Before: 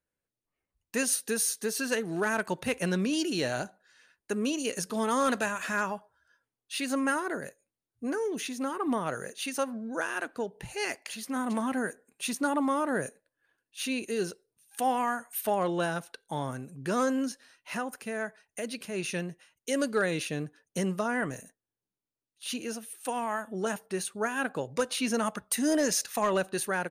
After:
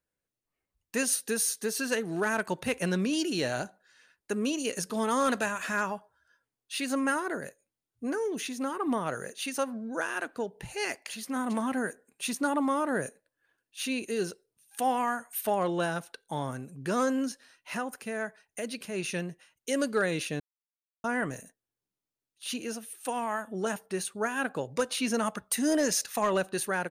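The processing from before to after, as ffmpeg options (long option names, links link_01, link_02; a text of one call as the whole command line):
ffmpeg -i in.wav -filter_complex "[0:a]asplit=3[link_01][link_02][link_03];[link_01]atrim=end=20.4,asetpts=PTS-STARTPTS,afade=type=out:start_time=20.396:duration=0.004:curve=hsin[link_04];[link_02]atrim=start=20.4:end=21.04,asetpts=PTS-STARTPTS,volume=0[link_05];[link_03]atrim=start=21.04,asetpts=PTS-STARTPTS,afade=type=in:duration=0.004:curve=hsin[link_06];[link_04][link_05][link_06]concat=n=3:v=0:a=1" out.wav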